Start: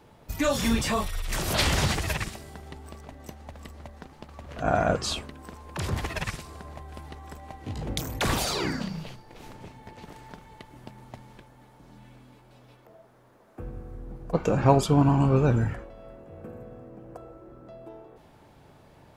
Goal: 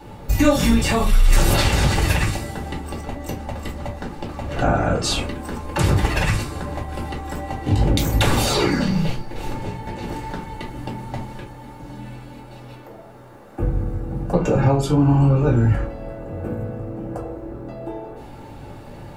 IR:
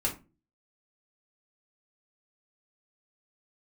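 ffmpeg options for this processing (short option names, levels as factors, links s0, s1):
-filter_complex "[0:a]acompressor=threshold=0.0355:ratio=20[s0];[1:a]atrim=start_sample=2205[s1];[s0][s1]afir=irnorm=-1:irlink=0,volume=2.37"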